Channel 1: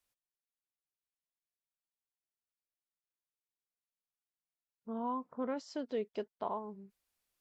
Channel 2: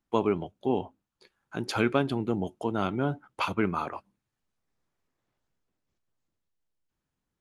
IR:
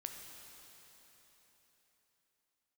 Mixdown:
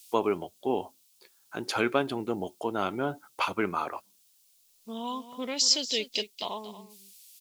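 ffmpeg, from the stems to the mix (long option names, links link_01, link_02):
-filter_complex "[0:a]aexciter=amount=12.7:drive=8.9:freq=2400,volume=1.5dB,asplit=2[link_01][link_02];[link_02]volume=-13.5dB[link_03];[1:a]bass=frequency=250:gain=-11,treble=frequency=4000:gain=1,volume=1dB[link_04];[link_03]aecho=0:1:232:1[link_05];[link_01][link_04][link_05]amix=inputs=3:normalize=0"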